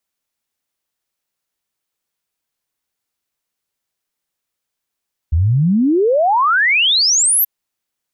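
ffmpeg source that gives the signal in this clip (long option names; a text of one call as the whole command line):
ffmpeg -f lavfi -i "aevalsrc='0.299*clip(min(t,2.13-t)/0.01,0,1)*sin(2*PI*74*2.13/log(13000/74)*(exp(log(13000/74)*t/2.13)-1))':duration=2.13:sample_rate=44100" out.wav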